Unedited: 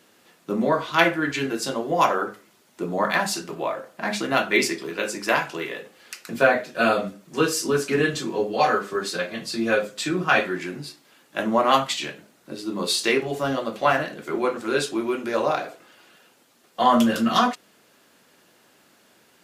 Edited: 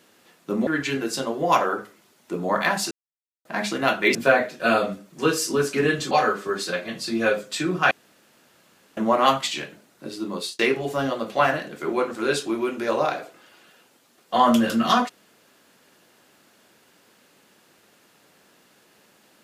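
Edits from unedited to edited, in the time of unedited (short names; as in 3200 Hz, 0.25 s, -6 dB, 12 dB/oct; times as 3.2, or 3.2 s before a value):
0.67–1.16 cut
3.4–3.94 mute
4.64–6.3 cut
8.26–8.57 cut
10.37–11.43 room tone
12.57–13.05 fade out equal-power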